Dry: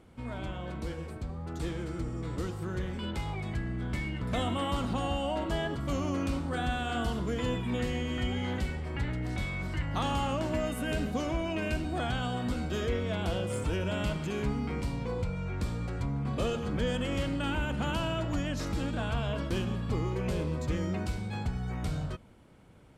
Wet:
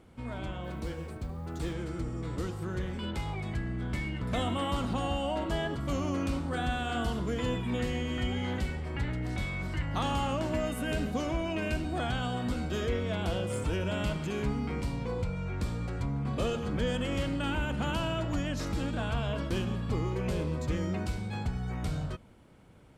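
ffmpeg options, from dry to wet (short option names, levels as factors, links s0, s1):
-filter_complex "[0:a]asettb=1/sr,asplit=3[s0][s1][s2];[s0]atrim=end=0.644[s3];[s1]atrim=start=0.64:end=1.73,asetpts=PTS-STARTPTS,afade=t=in:d=0.004:c=qsin,afade=t=out:st=1.086:d=0.004:c=qsin,acrusher=bits=9:mode=log:mix=0:aa=0.000001[s4];[s2]atrim=start=1.726[s5];[s3][s4]acrossfade=d=0.004:c1=hsin:c2=qsin[s6];[s6][s5]acrossfade=d=0.004:c1=qsin:c2=hsin"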